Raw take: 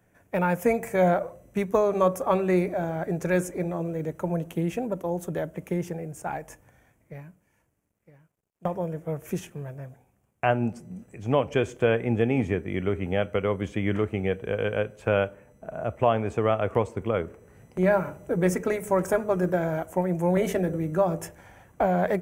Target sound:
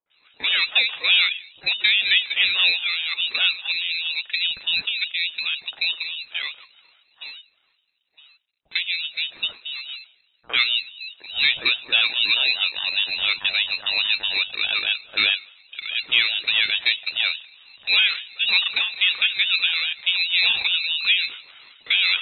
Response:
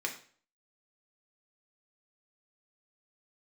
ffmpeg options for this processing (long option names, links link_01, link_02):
-filter_complex "[0:a]acontrast=82,lowpass=frequency=3000:width_type=q:width=0.5098,lowpass=frequency=3000:width_type=q:width=0.6013,lowpass=frequency=3000:width_type=q:width=0.9,lowpass=frequency=3000:width_type=q:width=2.563,afreqshift=-3500,acrossover=split=410|1400[link_01][link_02][link_03];[link_02]adelay=60[link_04];[link_03]adelay=100[link_05];[link_01][link_04][link_05]amix=inputs=3:normalize=0,aeval=exprs='val(0)*sin(2*PI*540*n/s+540*0.4/4.8*sin(2*PI*4.8*n/s))':channel_layout=same"